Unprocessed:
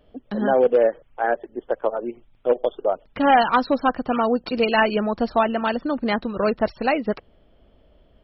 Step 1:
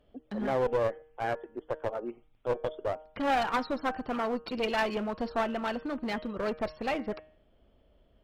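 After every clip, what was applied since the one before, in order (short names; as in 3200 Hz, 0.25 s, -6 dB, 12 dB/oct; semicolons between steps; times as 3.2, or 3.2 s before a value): de-hum 155.6 Hz, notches 22; one-sided clip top -22.5 dBFS; gain -8 dB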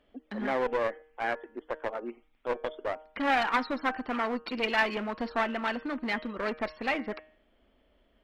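ten-band EQ 125 Hz -11 dB, 250 Hz +7 dB, 1000 Hz +4 dB, 2000 Hz +10 dB, 4000 Hz +4 dB; gain -4 dB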